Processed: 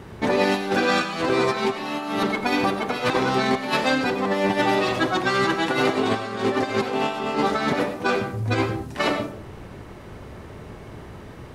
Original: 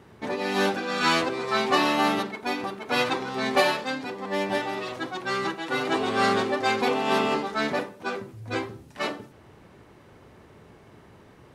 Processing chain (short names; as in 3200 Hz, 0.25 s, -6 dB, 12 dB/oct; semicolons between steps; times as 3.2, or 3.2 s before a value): low shelf 74 Hz +12 dB; negative-ratio compressor -28 dBFS, ratio -0.5; on a send: reverb RT60 0.50 s, pre-delay 55 ms, DRR 8 dB; on the sum: gain +6 dB